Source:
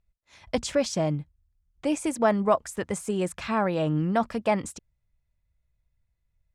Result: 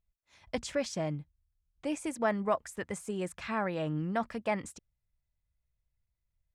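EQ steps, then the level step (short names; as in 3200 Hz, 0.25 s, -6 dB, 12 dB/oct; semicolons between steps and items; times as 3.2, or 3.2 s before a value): dynamic EQ 1900 Hz, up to +6 dB, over -44 dBFS, Q 1.9; -8.0 dB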